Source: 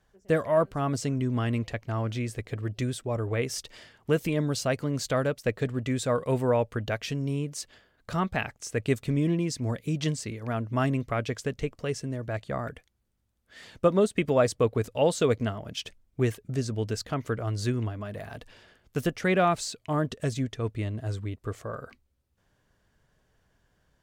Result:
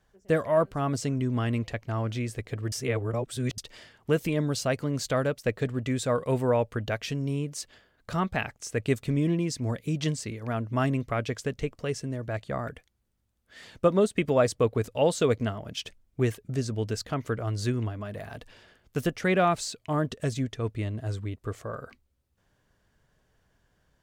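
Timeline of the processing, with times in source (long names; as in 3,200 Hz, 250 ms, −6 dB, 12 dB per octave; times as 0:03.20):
0:02.72–0:03.58: reverse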